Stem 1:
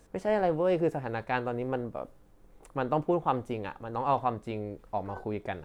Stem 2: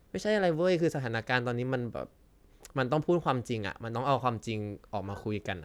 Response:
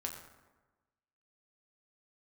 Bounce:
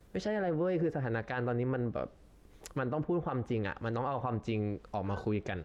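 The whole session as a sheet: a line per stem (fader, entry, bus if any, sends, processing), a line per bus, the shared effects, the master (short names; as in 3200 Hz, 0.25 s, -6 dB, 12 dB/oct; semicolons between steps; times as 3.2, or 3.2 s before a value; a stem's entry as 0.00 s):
-18.0 dB, 0.00 s, send -5 dB, dry
+2.5 dB, 7.3 ms, polarity flipped, no send, treble ducked by the level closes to 1800 Hz, closed at -28 dBFS; limiter -24.5 dBFS, peak gain reduction 9.5 dB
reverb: on, RT60 1.2 s, pre-delay 6 ms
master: limiter -24 dBFS, peak gain reduction 5 dB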